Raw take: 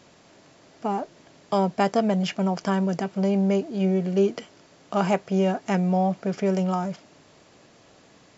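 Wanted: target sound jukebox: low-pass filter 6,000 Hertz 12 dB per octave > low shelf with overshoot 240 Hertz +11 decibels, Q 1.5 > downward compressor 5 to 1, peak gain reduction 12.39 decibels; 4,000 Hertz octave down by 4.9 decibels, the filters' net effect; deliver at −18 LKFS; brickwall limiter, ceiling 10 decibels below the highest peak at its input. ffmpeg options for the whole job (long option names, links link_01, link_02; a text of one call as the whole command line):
ffmpeg -i in.wav -af "equalizer=frequency=4000:width_type=o:gain=-7,alimiter=limit=-18dB:level=0:latency=1,lowpass=6000,lowshelf=frequency=240:width_type=q:width=1.5:gain=11,acompressor=threshold=-24dB:ratio=5,volume=9dB" out.wav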